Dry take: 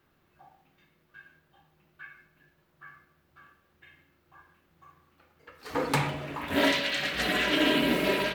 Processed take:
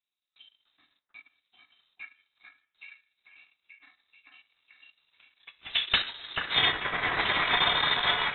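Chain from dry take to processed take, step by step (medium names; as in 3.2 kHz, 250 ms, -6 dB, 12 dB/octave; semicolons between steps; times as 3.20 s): gate with hold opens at -56 dBFS; on a send: repeats whose band climbs or falls 438 ms, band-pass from 2.8 kHz, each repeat -0.7 oct, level -1 dB; on the sum: transient shaper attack +6 dB, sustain -12 dB; dynamic bell 2.2 kHz, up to +4 dB, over -39 dBFS, Q 0.88; frequency inversion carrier 3.9 kHz; trim -3.5 dB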